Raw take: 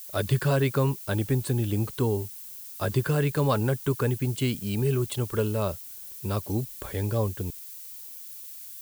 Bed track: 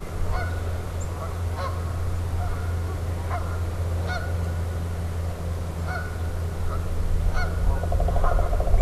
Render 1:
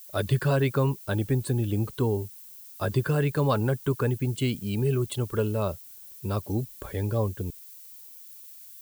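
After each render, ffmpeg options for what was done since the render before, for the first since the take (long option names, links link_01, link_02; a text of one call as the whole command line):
ffmpeg -i in.wav -af "afftdn=noise_reduction=6:noise_floor=-42" out.wav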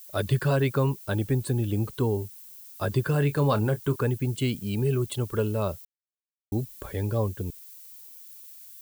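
ffmpeg -i in.wav -filter_complex "[0:a]asettb=1/sr,asplit=3[link_01][link_02][link_03];[link_01]atrim=end=3.114[link_04];[link_02]atrim=start=3.11:end=3.96,asetpts=PTS-STARTPTS,afade=type=in:duration=0.004:curve=qsin,afade=type=out:start_time=0.846:duration=0.004:curve=qsin,asplit=2[link_05][link_06];[link_06]adelay=28,volume=-12dB[link_07];[link_05][link_07]amix=inputs=2:normalize=0,atrim=end_sample=37485[link_08];[link_03]atrim=start=3.956[link_09];[link_04][link_08]acrossfade=duration=0.004:curve1=hsin:curve2=qsin[link_10];[link_10][link_09]acrossfade=duration=0.004:curve1=qsin:curve2=hsin,asplit=3[link_11][link_12][link_13];[link_11]atrim=end=5.85,asetpts=PTS-STARTPTS,afade=type=out:start_time=5.846:duration=0.004:curve=hsin[link_14];[link_12]atrim=start=5.85:end=6.52,asetpts=PTS-STARTPTS,volume=0[link_15];[link_13]atrim=start=6.52,asetpts=PTS-STARTPTS,afade=type=in:duration=0.004:curve=hsin[link_16];[link_14][link_15][link_16]concat=n=3:v=0:a=1" out.wav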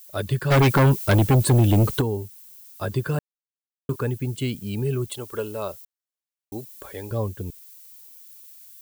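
ffmpeg -i in.wav -filter_complex "[0:a]asplit=3[link_01][link_02][link_03];[link_01]afade=type=out:start_time=0.5:duration=0.02[link_04];[link_02]aeval=exprs='0.237*sin(PI/2*2.82*val(0)/0.237)':channel_layout=same,afade=type=in:start_time=0.5:duration=0.02,afade=type=out:start_time=2:duration=0.02[link_05];[link_03]afade=type=in:start_time=2:duration=0.02[link_06];[link_04][link_05][link_06]amix=inputs=3:normalize=0,asettb=1/sr,asplit=3[link_07][link_08][link_09];[link_07]atrim=end=5.104[link_10];[link_08]atrim=start=5.1:end=7.11,asetpts=PTS-STARTPTS,afade=type=in:duration=0.004:curve=qsin,afade=type=out:start_time=2.006:duration=0.004:curve=qsin,bass=frequency=250:gain=-12,treble=frequency=4000:gain=2[link_11];[link_09]atrim=start=7.106[link_12];[link_10][link_11]acrossfade=duration=0.004:curve1=hsin:curve2=qsin[link_13];[link_13][link_12]acrossfade=duration=0.004:curve1=qsin:curve2=hsin,asplit=3[link_14][link_15][link_16];[link_14]atrim=end=3.19,asetpts=PTS-STARTPTS,afade=type=out:start_time=3.186:duration=0.004:curve=hsin[link_17];[link_15]atrim=start=3.19:end=3.89,asetpts=PTS-STARTPTS,volume=0[link_18];[link_16]atrim=start=3.89,asetpts=PTS-STARTPTS,afade=type=in:duration=0.004:curve=hsin[link_19];[link_17][link_18][link_19]concat=n=3:v=0:a=1" out.wav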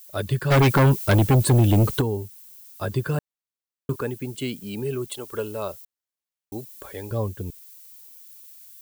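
ffmpeg -i in.wav -filter_complex "[0:a]asettb=1/sr,asplit=3[link_01][link_02][link_03];[link_01]atrim=end=4.014[link_04];[link_02]atrim=start=4.01:end=5.29,asetpts=PTS-STARTPTS,afade=type=in:duration=0.004:curve=qsin,afade=type=out:start_time=1.276:duration=0.004:curve=qsin,highpass=190[link_05];[link_03]atrim=start=5.286[link_06];[link_04][link_05]acrossfade=duration=0.004:curve1=hsin:curve2=qsin[link_07];[link_07][link_06]acrossfade=duration=0.004:curve1=qsin:curve2=hsin" out.wav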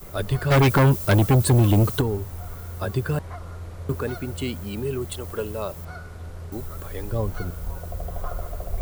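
ffmpeg -i in.wav -i bed.wav -filter_complex "[1:a]volume=-9dB[link_01];[0:a][link_01]amix=inputs=2:normalize=0" out.wav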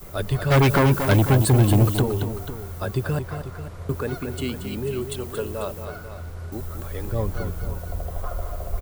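ffmpeg -i in.wav -af "aecho=1:1:228|492:0.376|0.237" out.wav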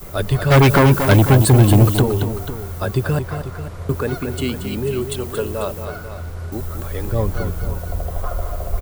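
ffmpeg -i in.wav -af "volume=5.5dB" out.wav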